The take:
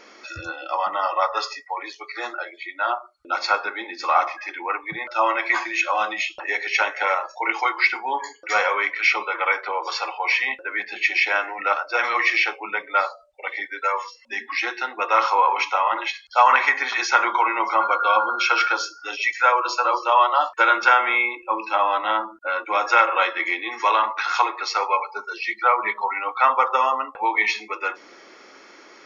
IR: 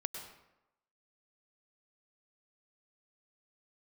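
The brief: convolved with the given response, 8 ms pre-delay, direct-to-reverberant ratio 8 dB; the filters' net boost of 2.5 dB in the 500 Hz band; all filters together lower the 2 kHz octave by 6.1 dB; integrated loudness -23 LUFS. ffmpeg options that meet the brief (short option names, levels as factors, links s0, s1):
-filter_complex "[0:a]equalizer=f=500:t=o:g=3.5,equalizer=f=2000:t=o:g=-8.5,asplit=2[s0][s1];[1:a]atrim=start_sample=2205,adelay=8[s2];[s1][s2]afir=irnorm=-1:irlink=0,volume=0.398[s3];[s0][s3]amix=inputs=2:normalize=0"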